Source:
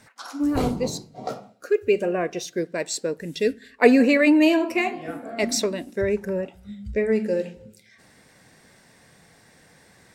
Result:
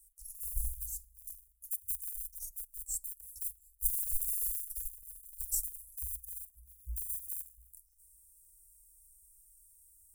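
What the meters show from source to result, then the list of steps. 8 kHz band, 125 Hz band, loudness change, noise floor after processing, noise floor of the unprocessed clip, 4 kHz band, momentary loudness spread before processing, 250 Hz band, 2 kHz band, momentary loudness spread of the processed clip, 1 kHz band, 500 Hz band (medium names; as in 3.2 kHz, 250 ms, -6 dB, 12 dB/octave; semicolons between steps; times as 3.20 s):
-3.5 dB, under -15 dB, -14.0 dB, -67 dBFS, -56 dBFS, -28.5 dB, 18 LU, under -40 dB, under -40 dB, 16 LU, under -40 dB, under -40 dB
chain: in parallel at -8 dB: sample-and-hold 39×; on the sum: inverse Chebyshev band-stop 150–3600 Hz, stop band 60 dB; treble shelf 4.1 kHz +7 dB; spring tank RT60 2.1 s, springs 36 ms, DRR 20 dB; trim +2 dB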